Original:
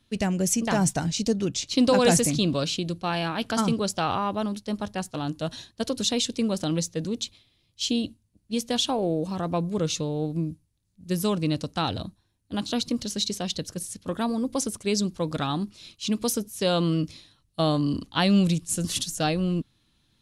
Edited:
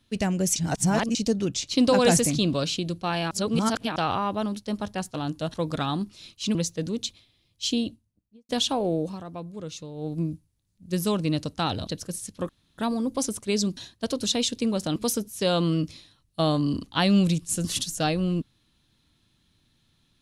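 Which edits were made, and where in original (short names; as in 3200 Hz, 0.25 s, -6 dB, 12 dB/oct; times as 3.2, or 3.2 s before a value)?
0.56–1.15 reverse
3.31–3.96 reverse
5.54–6.73 swap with 15.15–16.16
7.9–8.67 studio fade out
9.18–10.35 dip -10.5 dB, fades 0.23 s
12.05–13.54 cut
14.16 insert room tone 0.29 s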